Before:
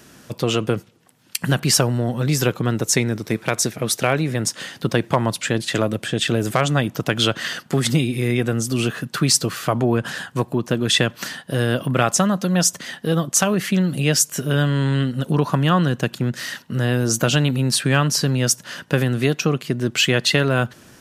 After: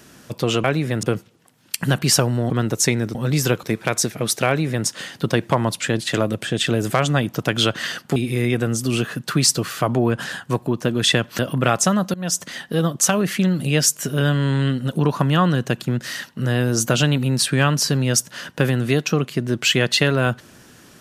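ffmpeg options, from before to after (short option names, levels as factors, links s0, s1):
-filter_complex "[0:a]asplit=9[s0][s1][s2][s3][s4][s5][s6][s7][s8];[s0]atrim=end=0.642[s9];[s1]atrim=start=4.078:end=4.472[s10];[s2]atrim=start=0.638:end=2.112[s11];[s3]atrim=start=2.588:end=3.242[s12];[s4]atrim=start=2.108:end=2.592[s13];[s5]atrim=start=3.238:end=7.772[s14];[s6]atrim=start=8.018:end=11.252[s15];[s7]atrim=start=11.718:end=12.47,asetpts=PTS-STARTPTS,afade=t=out:st=0.748:d=0.004:c=hsin:silence=0.112202[s16];[s8]atrim=start=12.47,asetpts=PTS-STARTPTS,afade=t=in:d=0.33:silence=0.112202[s17];[s9][s10]acrossfade=d=0.004:c1=hsin:c2=hsin[s18];[s18][s11]acrossfade=d=0.004:c1=hsin:c2=hsin[s19];[s19][s12]acrossfade=d=0.004:c1=hsin:c2=hsin[s20];[s20][s13]acrossfade=d=0.004:c1=hsin:c2=hsin[s21];[s21][s14]acrossfade=d=0.004:c1=hsin:c2=hsin[s22];[s22][s15]acrossfade=d=0.004:c1=hsin:c2=hsin[s23];[s16][s17]concat=n=2:v=0:a=1[s24];[s23][s24]acrossfade=d=0.004:c1=hsin:c2=hsin"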